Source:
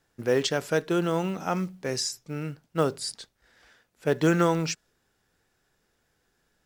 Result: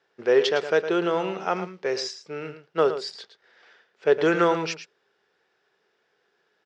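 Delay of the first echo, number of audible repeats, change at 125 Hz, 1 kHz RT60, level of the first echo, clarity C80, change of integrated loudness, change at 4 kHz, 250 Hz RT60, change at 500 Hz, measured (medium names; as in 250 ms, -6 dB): 110 ms, 1, -8.5 dB, no reverb, -11.0 dB, no reverb, +3.0 dB, +1.5 dB, no reverb, +5.0 dB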